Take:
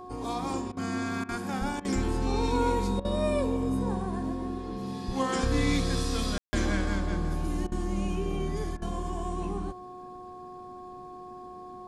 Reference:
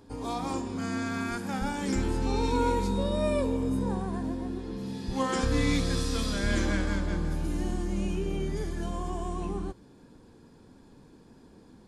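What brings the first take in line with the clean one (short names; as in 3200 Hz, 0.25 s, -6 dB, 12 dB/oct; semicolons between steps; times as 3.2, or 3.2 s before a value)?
de-hum 364 Hz, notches 3; room tone fill 6.38–6.53; interpolate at 0.72/1.24/1.8/3/7.67/8.77, 47 ms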